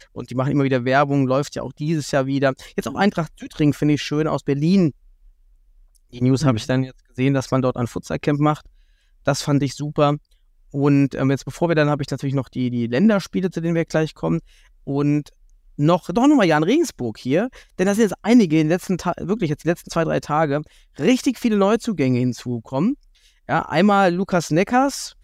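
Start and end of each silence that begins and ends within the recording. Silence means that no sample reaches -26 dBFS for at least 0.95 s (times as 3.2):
4.9–6.16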